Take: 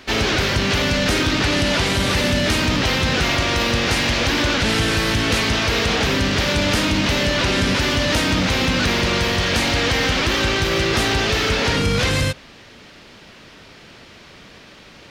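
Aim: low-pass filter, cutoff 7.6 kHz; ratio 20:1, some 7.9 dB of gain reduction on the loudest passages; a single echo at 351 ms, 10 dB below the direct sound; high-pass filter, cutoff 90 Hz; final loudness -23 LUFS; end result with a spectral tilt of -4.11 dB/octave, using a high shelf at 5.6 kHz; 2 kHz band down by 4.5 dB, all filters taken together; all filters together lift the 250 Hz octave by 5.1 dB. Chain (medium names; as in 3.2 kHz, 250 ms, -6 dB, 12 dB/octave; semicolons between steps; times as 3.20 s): high-pass 90 Hz; low-pass 7.6 kHz; peaking EQ 250 Hz +6.5 dB; peaking EQ 2 kHz -5 dB; treble shelf 5.6 kHz -5.5 dB; compression 20:1, threshold -21 dBFS; delay 351 ms -10 dB; trim +1.5 dB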